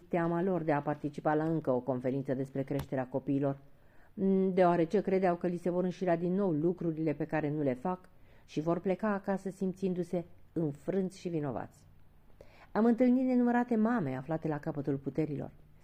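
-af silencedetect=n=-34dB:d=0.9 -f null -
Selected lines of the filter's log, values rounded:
silence_start: 11.63
silence_end: 12.76 | silence_duration: 1.13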